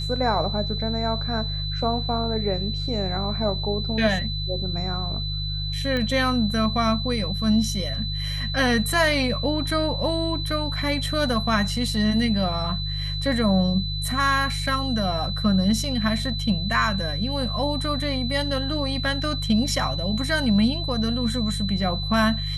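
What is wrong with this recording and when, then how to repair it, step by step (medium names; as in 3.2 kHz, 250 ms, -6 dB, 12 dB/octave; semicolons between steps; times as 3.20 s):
hum 50 Hz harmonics 3 -29 dBFS
whine 4 kHz -30 dBFS
5.97 s: pop -15 dBFS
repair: de-click; band-stop 4 kHz, Q 30; de-hum 50 Hz, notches 3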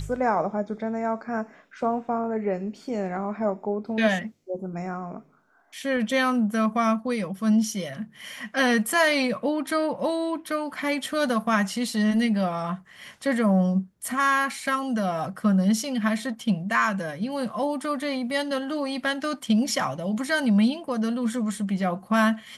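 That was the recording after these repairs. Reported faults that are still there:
nothing left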